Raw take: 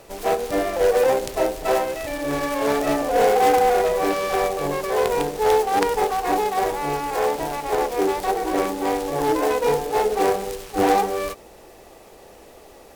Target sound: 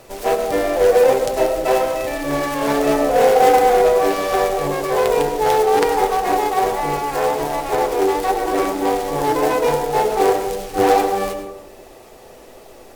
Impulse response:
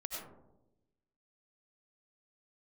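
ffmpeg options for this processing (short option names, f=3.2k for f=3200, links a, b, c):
-filter_complex "[0:a]asplit=2[a][b];[1:a]atrim=start_sample=2205,adelay=8[c];[b][c]afir=irnorm=-1:irlink=0,volume=-4.5dB[d];[a][d]amix=inputs=2:normalize=0,volume=2dB"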